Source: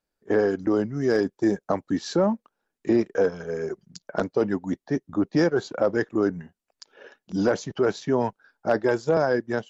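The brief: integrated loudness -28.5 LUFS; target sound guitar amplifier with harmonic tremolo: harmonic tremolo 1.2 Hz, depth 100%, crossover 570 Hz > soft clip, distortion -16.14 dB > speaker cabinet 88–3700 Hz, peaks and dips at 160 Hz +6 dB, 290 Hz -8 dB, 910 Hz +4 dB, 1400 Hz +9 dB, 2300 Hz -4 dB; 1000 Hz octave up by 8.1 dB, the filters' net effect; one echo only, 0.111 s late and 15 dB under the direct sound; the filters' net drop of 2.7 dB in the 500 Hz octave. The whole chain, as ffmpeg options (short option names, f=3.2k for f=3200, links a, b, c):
-filter_complex "[0:a]equalizer=f=500:t=o:g=-4.5,equalizer=f=1k:t=o:g=7,aecho=1:1:111:0.178,acrossover=split=570[a][b];[a]aeval=exprs='val(0)*(1-1/2+1/2*cos(2*PI*1.2*n/s))':c=same[c];[b]aeval=exprs='val(0)*(1-1/2-1/2*cos(2*PI*1.2*n/s))':c=same[d];[c][d]amix=inputs=2:normalize=0,asoftclip=threshold=-21dB,highpass=88,equalizer=f=160:t=q:w=4:g=6,equalizer=f=290:t=q:w=4:g=-8,equalizer=f=910:t=q:w=4:g=4,equalizer=f=1.4k:t=q:w=4:g=9,equalizer=f=2.3k:t=q:w=4:g=-4,lowpass=f=3.7k:w=0.5412,lowpass=f=3.7k:w=1.3066,volume=3.5dB"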